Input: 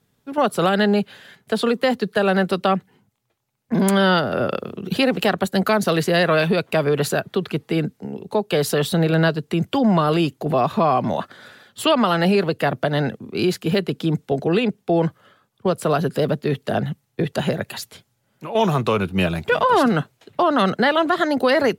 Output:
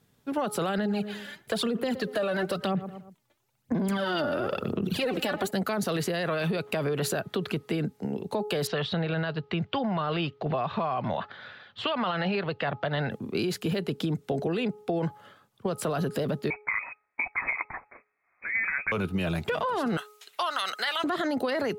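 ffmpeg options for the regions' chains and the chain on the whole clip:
-filter_complex "[0:a]asettb=1/sr,asplit=3[s0][s1][s2];[s0]atrim=end=0.784[s3];[s1]atrim=start=0.78:end=5.51,asetpts=PTS-STARTPTS,afade=t=in:d=0.004:c=qsin,afade=t=out:st=4.726:d=0.004:c=qsin,aphaser=in_gain=1:out_gain=1:delay=3.5:decay=0.63:speed=1:type=sinusoidal,asplit=2[s4][s5];[s5]adelay=117,lowpass=f=1900:p=1,volume=0.0841,asplit=2[s6][s7];[s7]adelay=117,lowpass=f=1900:p=1,volume=0.41,asplit=2[s8][s9];[s9]adelay=117,lowpass=f=1900:p=1,volume=0.41[s10];[s4][s6][s8][s10]amix=inputs=4:normalize=0,atrim=end_sample=208593[s11];[s2]atrim=start=5.506[s12];[s3][s11]acrossfade=d=0.004:c1=hsin:c2=qsin[s13];[s13][s12]acrossfade=d=0.004:c1=qsin:c2=hsin,asettb=1/sr,asplit=3[s14][s15][s16];[s14]atrim=end=8.674[s17];[s15]atrim=start=8.67:end=13.11,asetpts=PTS-STARTPTS,afade=t=in:d=0.004:c=qsin,afade=t=out:st=4.436:d=0.004:c=qsin,lowpass=f=3900:w=0.5412,lowpass=f=3900:w=1.3066,equalizer=f=290:t=o:w=1.7:g=-9[s18];[s16]atrim=start=13.106[s19];[s17][s18]acrossfade=d=0.004:c1=hsin:c2=qsin[s20];[s20][s19]acrossfade=d=0.004:c1=qsin:c2=hsin,asettb=1/sr,asplit=3[s21][s22][s23];[s21]atrim=end=16.504[s24];[s22]atrim=start=16.5:end=18.92,asetpts=PTS-STARTPTS,afade=t=in:d=0.004:c=qsin,afade=t=out:st=2.416:d=0.004:c=qsin,highpass=440,lowpass=f=2300:t=q:w=0.5098,lowpass=f=2300:t=q:w=0.6013,lowpass=f=2300:t=q:w=0.9,lowpass=f=2300:t=q:w=2.563,afreqshift=-2700[s25];[s23]atrim=start=18.916[s26];[s24][s25]acrossfade=d=0.004:c1=hsin:c2=qsin[s27];[s27][s26]acrossfade=d=0.004:c1=qsin:c2=hsin,asettb=1/sr,asplit=3[s28][s29][s30];[s28]atrim=end=19.974[s31];[s29]atrim=start=19.97:end=21.04,asetpts=PTS-STARTPTS,afade=t=in:d=0.004:c=qsin,afade=t=out:st=1.066:d=0.004:c=qsin,highpass=1300,highshelf=f=4200:g=10.5,bandreject=f=1700:w=22[s32];[s30]atrim=start=21.036[s33];[s31][s32]acrossfade=d=0.004:c1=hsin:c2=qsin[s34];[s34][s33]acrossfade=d=0.004:c1=qsin:c2=hsin,bandreject=f=420.7:t=h:w=4,bandreject=f=841.4:t=h:w=4,bandreject=f=1262.1:t=h:w=4,alimiter=limit=0.168:level=0:latency=1:release=15,acompressor=threshold=0.0562:ratio=6"

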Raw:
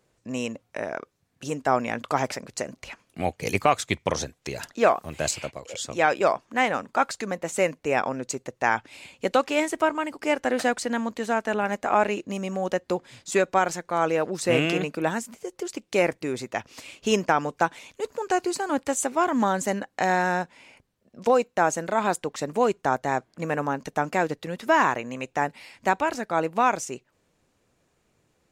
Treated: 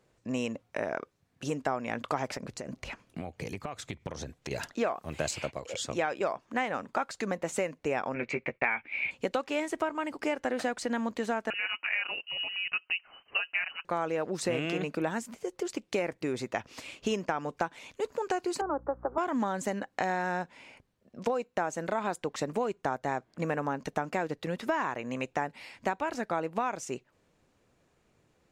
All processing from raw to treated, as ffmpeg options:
-filter_complex "[0:a]asettb=1/sr,asplit=3[s0][s1][s2];[s0]atrim=end=2.374[s3];[s1]atrim=start=2.37:end=4.51,asetpts=PTS-STARTPTS,afade=t=in:d=0.004:c=qsin,afade=t=out:st=2.136:d=0.004:c=qsin,lowshelf=f=360:g=6,acompressor=threshold=0.0224:ratio=12:attack=3.2:release=140:knee=1:detection=peak[s4];[s2]atrim=start=4.506[s5];[s3][s4]acrossfade=d=0.004:c1=hsin:c2=qsin[s6];[s6][s5]acrossfade=d=0.004:c1=qsin:c2=hsin,asettb=1/sr,asplit=3[s7][s8][s9];[s7]atrim=end=8.144[s10];[s8]atrim=start=8.14:end=9.11,asetpts=PTS-STARTPTS,afade=t=in:d=0.004:c=qsin,afade=t=out:st=0.966:d=0.004:c=qsin,agate=range=0.0224:threshold=0.00355:ratio=3:release=100:detection=peak,lowpass=f=2300:t=q:w=12,asplit=2[s11][s12];[s12]adelay=13,volume=0.531[s13];[s11][s13]amix=inputs=2:normalize=0,atrim=end_sample=42777[s14];[s9]atrim=start=9.106[s15];[s10][s14]acrossfade=d=0.004:c1=hsin:c2=qsin[s16];[s16][s15]acrossfade=d=0.004:c1=qsin:c2=hsin,asettb=1/sr,asplit=3[s17][s18][s19];[s17]atrim=end=11.504[s20];[s18]atrim=start=11.5:end=13.85,asetpts=PTS-STARTPTS,afade=t=in:d=0.004:c=qsin,afade=t=out:st=2.346:d=0.004:c=qsin,flanger=delay=0.5:depth=5.6:regen=46:speed=1.8:shape=sinusoidal,lowpass=f=2600:t=q:w=0.5098,lowpass=f=2600:t=q:w=0.6013,lowpass=f=2600:t=q:w=0.9,lowpass=f=2600:t=q:w=2.563,afreqshift=-3100[s21];[s19]atrim=start=13.846[s22];[s20][s21]acrossfade=d=0.004:c1=hsin:c2=qsin[s23];[s23][s22]acrossfade=d=0.004:c1=qsin:c2=hsin,asettb=1/sr,asplit=3[s24][s25][s26];[s24]atrim=end=18.614[s27];[s25]atrim=start=18.61:end=19.18,asetpts=PTS-STARTPTS,afade=t=in:d=0.004:c=qsin,afade=t=out:st=0.566:d=0.004:c=qsin,asuperpass=centerf=660:order=12:qfactor=0.6,aeval=exprs='val(0)+0.00355*(sin(2*PI*60*n/s)+sin(2*PI*2*60*n/s)/2+sin(2*PI*3*60*n/s)/3+sin(2*PI*4*60*n/s)/4+sin(2*PI*5*60*n/s)/5)':c=same[s28];[s26]atrim=start=19.176[s29];[s27][s28]acrossfade=d=0.004:c1=hsin:c2=qsin[s30];[s30][s29]acrossfade=d=0.004:c1=qsin:c2=hsin,highshelf=f=5800:g=-7,acompressor=threshold=0.0447:ratio=6"

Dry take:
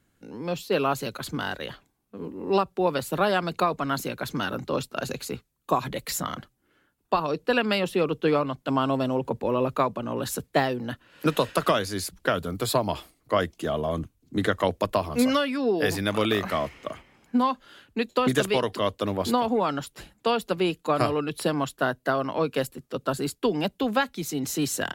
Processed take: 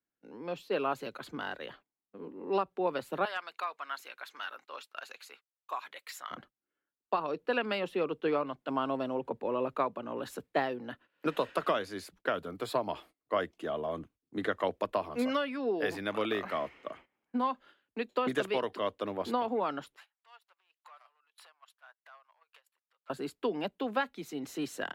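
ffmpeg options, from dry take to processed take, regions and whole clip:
-filter_complex "[0:a]asettb=1/sr,asplit=3[s0][s1][s2];[s0]atrim=end=3.254[s3];[s1]atrim=start=3.25:end=6.31,asetpts=PTS-STARTPTS,afade=t=in:d=0.004:c=qsin,afade=t=out:st=3.056:d=0.004:c=qsin,highpass=1200,aeval=exprs='0.133*(abs(mod(val(0)/0.133+3,4)-2)-1)':c=same[s4];[s2]atrim=start=6.306[s5];[s3][s4]acrossfade=d=0.004:c1=hsin:c2=qsin[s6];[s6][s5]acrossfade=d=0.004:c1=qsin:c2=hsin,asettb=1/sr,asplit=3[s7][s8][s9];[s7]atrim=end=19.964[s10];[s8]atrim=start=19.96:end=23.1,asetpts=PTS-STARTPTS,afade=t=in:d=0.004:c=qsin,afade=t=out:st=3.136:d=0.004:c=qsin,acompressor=threshold=0.0158:ratio=10:attack=3.2:release=140:knee=1:detection=peak,volume=59.6,asoftclip=hard,volume=0.0168,highpass=f=880:w=0.5412,highpass=f=880:w=1.3066[s11];[s9]atrim=start=23.096[s12];[s10][s11]acrossfade=d=0.004:c1=hsin:c2=qsin[s13];[s13][s12]acrossfade=d=0.004:c1=qsin:c2=hsin,agate=range=0.158:threshold=0.00501:ratio=16:detection=peak,acrossover=split=230 3400:gain=0.224 1 0.251[s14][s15][s16];[s14][s15][s16]amix=inputs=3:normalize=0,volume=0.473"

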